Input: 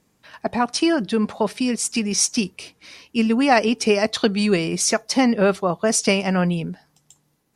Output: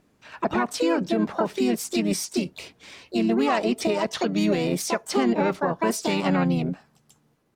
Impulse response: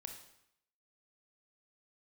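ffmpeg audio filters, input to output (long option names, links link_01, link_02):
-filter_complex "[0:a]asplit=3[link_01][link_02][link_03];[link_02]asetrate=37084,aresample=44100,atempo=1.18921,volume=-10dB[link_04];[link_03]asetrate=66075,aresample=44100,atempo=0.66742,volume=-3dB[link_05];[link_01][link_04][link_05]amix=inputs=3:normalize=0,alimiter=limit=-12.5dB:level=0:latency=1:release=204,highshelf=frequency=4300:gain=-10.5"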